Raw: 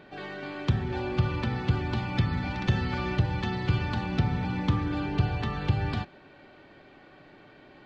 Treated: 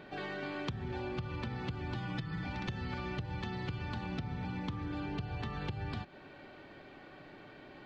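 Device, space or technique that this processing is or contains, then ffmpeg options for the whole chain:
serial compression, leveller first: -filter_complex "[0:a]asettb=1/sr,asplit=3[link_01][link_02][link_03];[link_01]atrim=end=1.944[link_04];[link_02]atrim=start=1.94:end=2.46,asetpts=PTS-STARTPTS,afade=type=in:duration=0.004:curve=qsin,afade=type=out:start_time=0.516:duration=0.004:curve=qsin,aecho=1:1:6.2:0.78,atrim=end_sample=22932[link_05];[link_03]atrim=start=2.456[link_06];[link_04][link_05]acrossfade=duration=0.004:curve1=hsin:curve2=qsin[link_07];[link_07][link_06]acrossfade=duration=0.004:curve1=qsin:curve2=hsin,acompressor=threshold=-26dB:ratio=2.5,acompressor=threshold=-36dB:ratio=5"

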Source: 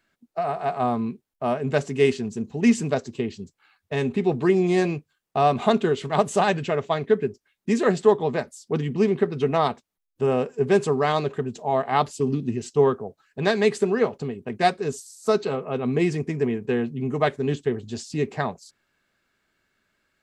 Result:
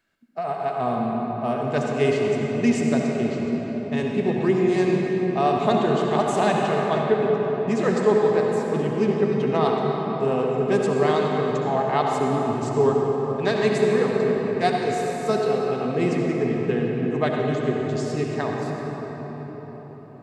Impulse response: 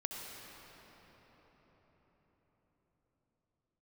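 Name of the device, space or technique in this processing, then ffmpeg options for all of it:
cathedral: -filter_complex "[1:a]atrim=start_sample=2205[link_01];[0:a][link_01]afir=irnorm=-1:irlink=0,asettb=1/sr,asplit=3[link_02][link_03][link_04];[link_02]atrim=end=7.034[link_05];[link_03]atrim=start=7.03:end=7.81,asetpts=PTS-STARTPTS,afade=type=in:duration=0.004:curve=qsin,afade=type=out:start_time=0.776:duration=0.004:curve=qsin,highshelf=frequency=7900:gain=-6[link_06];[link_04]atrim=start=7.806[link_07];[link_05][link_06]acrossfade=duration=0.004:curve1=hsin:curve2=qsin[link_08];[link_08][link_07]acrossfade=duration=0.004:curve1=qsin:curve2=hsin"

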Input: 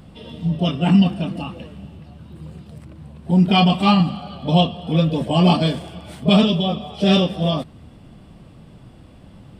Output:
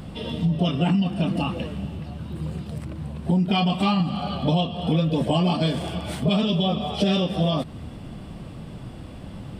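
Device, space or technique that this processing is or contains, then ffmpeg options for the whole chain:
serial compression, peaks first: -af "acompressor=threshold=-22dB:ratio=5,acompressor=threshold=-30dB:ratio=1.5,volume=6.5dB"

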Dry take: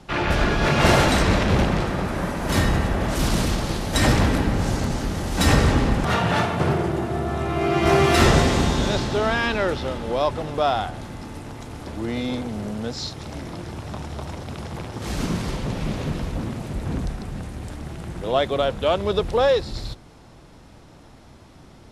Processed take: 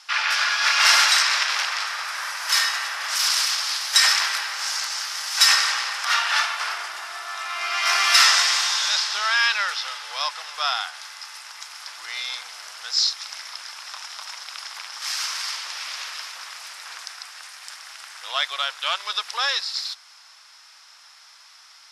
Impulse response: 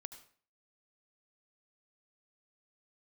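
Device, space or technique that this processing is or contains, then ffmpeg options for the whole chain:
headphones lying on a table: -af "highpass=frequency=1200:width=0.5412,highpass=frequency=1200:width=1.3066,equalizer=frequency=5200:width_type=o:width=0.44:gain=11,volume=5dB"

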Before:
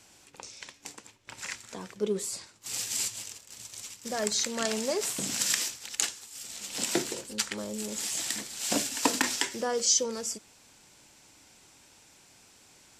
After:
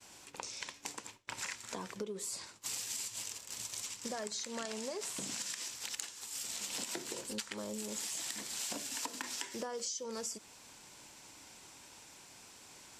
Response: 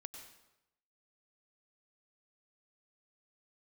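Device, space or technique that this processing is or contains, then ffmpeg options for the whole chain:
serial compression, leveller first: -filter_complex "[0:a]equalizer=frequency=1000:width=5.2:gain=4.5,acompressor=threshold=-31dB:ratio=3,acompressor=threshold=-41dB:ratio=6,asettb=1/sr,asplit=3[link_01][link_02][link_03];[link_01]atrim=end=3.864[link_04];[link_02]atrim=start=3.86:end=5.71,asetpts=PTS-STARTPTS,afade=type=in:duration=0.004:curve=qsin,afade=type=out:start_time=1.846:duration=0.004:curve=qsin,lowpass=11000[link_05];[link_03]atrim=start=5.706[link_06];[link_04][link_05]acrossfade=duration=0.004:curve1=hsin:curve2=qsin[link_07];[link_07][link_06]acrossfade=duration=0.004:curve1=qsin:curve2=hsin,lowshelf=frequency=160:gain=-4,agate=range=-33dB:threshold=-55dB:ratio=3:detection=peak,volume=3.5dB"

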